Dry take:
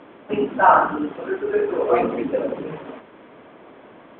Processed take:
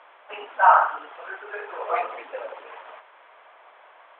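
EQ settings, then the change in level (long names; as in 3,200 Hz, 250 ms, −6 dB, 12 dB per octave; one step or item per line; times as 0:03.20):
high-pass filter 720 Hz 24 dB per octave
high-frequency loss of the air 110 metres
0.0 dB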